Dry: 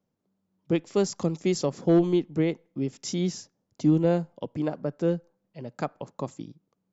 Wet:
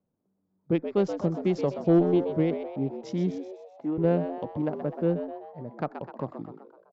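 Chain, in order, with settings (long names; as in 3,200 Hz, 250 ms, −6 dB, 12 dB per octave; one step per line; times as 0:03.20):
adaptive Wiener filter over 15 samples
0:03.38–0:03.98: band-pass filter 460–2,200 Hz
0:04.56–0:05.12: background noise violet −60 dBFS
high-frequency loss of the air 240 metres
echo with shifted repeats 127 ms, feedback 51%, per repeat +96 Hz, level −9.5 dB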